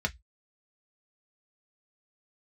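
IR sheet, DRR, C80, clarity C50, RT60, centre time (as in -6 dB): 3.0 dB, 39.5 dB, 26.5 dB, 0.10 s, 4 ms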